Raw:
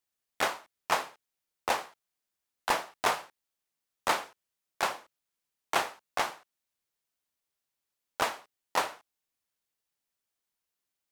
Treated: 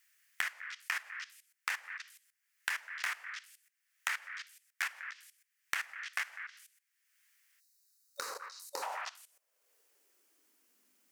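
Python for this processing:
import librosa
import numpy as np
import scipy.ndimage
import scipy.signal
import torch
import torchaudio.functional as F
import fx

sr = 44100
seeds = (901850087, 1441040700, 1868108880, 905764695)

p1 = fx.peak_eq(x, sr, hz=770.0, db=-5.5, octaves=1.2)
p2 = p1 + fx.echo_stepped(p1, sr, ms=100, hz=620.0, octaves=1.4, feedback_pct=70, wet_db=-6, dry=0)
p3 = fx.spec_box(p2, sr, start_s=7.6, length_s=1.23, low_hz=570.0, high_hz=3700.0, gain_db=-21)
p4 = fx.peak_eq(p3, sr, hz=3800.0, db=-6.5, octaves=0.51)
p5 = fx.level_steps(p4, sr, step_db=17)
p6 = fx.filter_sweep_highpass(p5, sr, from_hz=1800.0, to_hz=240.0, start_s=7.7, end_s=10.8, q=3.2)
y = fx.band_squash(p6, sr, depth_pct=100)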